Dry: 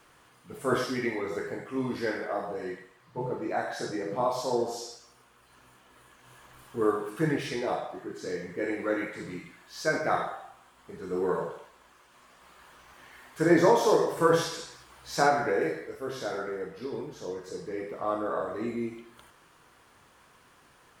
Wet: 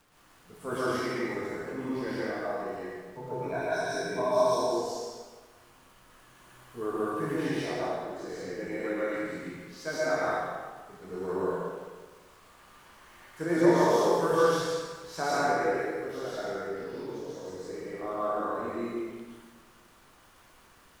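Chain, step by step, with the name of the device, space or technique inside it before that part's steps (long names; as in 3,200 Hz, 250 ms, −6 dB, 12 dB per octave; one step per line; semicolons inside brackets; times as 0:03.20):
0:03.31–0:04.57: EQ curve with evenly spaced ripples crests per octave 1.6, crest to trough 16 dB
vinyl LP (surface crackle 71 per second −43 dBFS; pink noise bed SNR 31 dB)
dense smooth reverb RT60 1.4 s, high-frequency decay 0.75×, pre-delay 105 ms, DRR −6.5 dB
level −8.5 dB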